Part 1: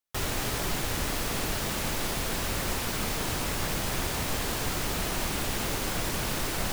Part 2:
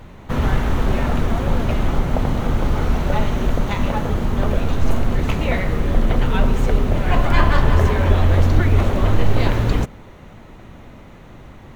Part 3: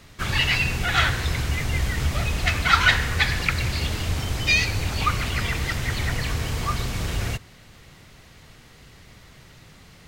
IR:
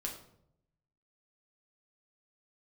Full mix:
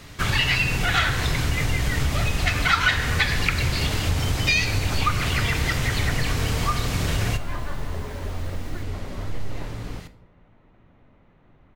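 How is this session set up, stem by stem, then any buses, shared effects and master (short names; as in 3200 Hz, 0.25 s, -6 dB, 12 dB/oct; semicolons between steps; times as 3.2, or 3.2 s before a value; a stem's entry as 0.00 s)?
-19.5 dB, 2.10 s, no send, dry
-18.0 dB, 0.15 s, send -9 dB, LPF 3100 Hz
+2.0 dB, 0.00 s, send -4 dB, dry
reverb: on, RT60 0.75 s, pre-delay 7 ms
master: compressor 2.5:1, threshold -20 dBFS, peak gain reduction 10 dB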